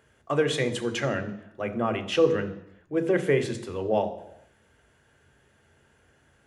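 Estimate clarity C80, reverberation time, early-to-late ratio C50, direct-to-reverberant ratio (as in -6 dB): 15.0 dB, 0.80 s, 13.0 dB, 7.0 dB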